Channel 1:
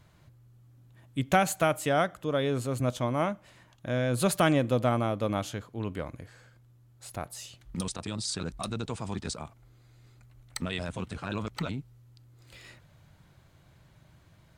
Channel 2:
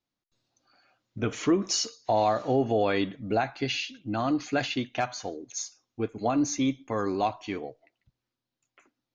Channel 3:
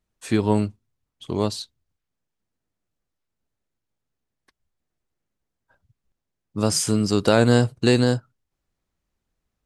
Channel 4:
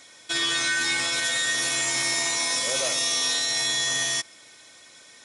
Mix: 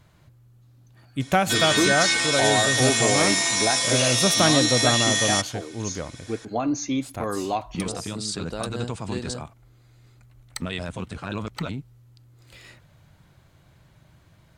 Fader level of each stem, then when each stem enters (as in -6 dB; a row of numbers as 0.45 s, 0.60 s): +3.0 dB, +0.5 dB, -16.0 dB, +2.5 dB; 0.00 s, 0.30 s, 1.25 s, 1.20 s